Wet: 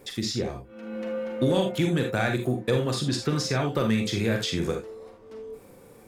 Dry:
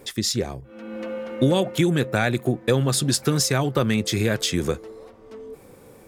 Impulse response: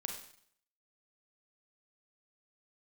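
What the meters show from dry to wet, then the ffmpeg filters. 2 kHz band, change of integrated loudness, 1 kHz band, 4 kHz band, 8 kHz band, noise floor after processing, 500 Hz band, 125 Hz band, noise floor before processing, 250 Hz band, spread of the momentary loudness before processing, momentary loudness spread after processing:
−3.5 dB, −4.0 dB, −3.0 dB, −4.5 dB, −10.5 dB, −51 dBFS, −3.0 dB, −4.0 dB, −49 dBFS, −3.0 dB, 17 LU, 17 LU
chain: -filter_complex "[0:a]acrossover=split=5700[link_01][link_02];[link_02]acompressor=threshold=-43dB:ratio=6[link_03];[link_01][link_03]amix=inputs=2:normalize=0[link_04];[1:a]atrim=start_sample=2205,atrim=end_sample=3969[link_05];[link_04][link_05]afir=irnorm=-1:irlink=0,acontrast=82,volume=-9dB"

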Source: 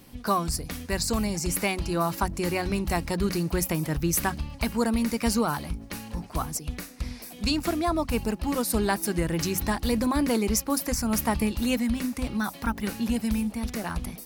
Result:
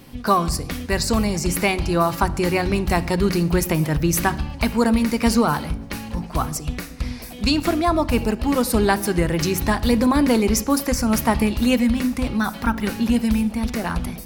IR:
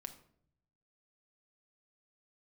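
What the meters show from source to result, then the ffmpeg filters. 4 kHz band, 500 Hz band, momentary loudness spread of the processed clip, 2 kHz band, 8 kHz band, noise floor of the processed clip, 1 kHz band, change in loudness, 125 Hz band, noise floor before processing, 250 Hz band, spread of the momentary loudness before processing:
+5.5 dB, +7.5 dB, 8 LU, +7.0 dB, +3.0 dB, −36 dBFS, +7.0 dB, +6.5 dB, +7.0 dB, −45 dBFS, +7.0 dB, 7 LU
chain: -filter_complex "[0:a]asplit=2[link_01][link_02];[link_02]lowpass=4500[link_03];[1:a]atrim=start_sample=2205,asetrate=29106,aresample=44100,highshelf=frequency=9100:gain=11.5[link_04];[link_03][link_04]afir=irnorm=-1:irlink=0,volume=-1.5dB[link_05];[link_01][link_05]amix=inputs=2:normalize=0,volume=3dB"

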